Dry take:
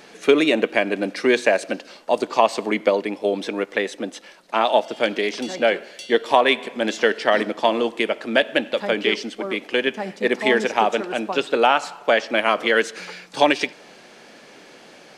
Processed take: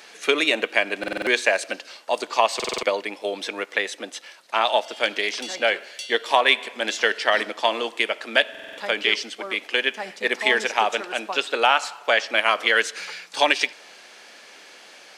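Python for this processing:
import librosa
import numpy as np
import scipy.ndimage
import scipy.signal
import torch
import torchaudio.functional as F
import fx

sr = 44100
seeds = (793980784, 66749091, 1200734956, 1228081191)

y = fx.highpass(x, sr, hz=1400.0, slope=6)
y = fx.buffer_glitch(y, sr, at_s=(0.99, 2.55, 8.5), block=2048, repeats=5)
y = y * librosa.db_to_amplitude(3.5)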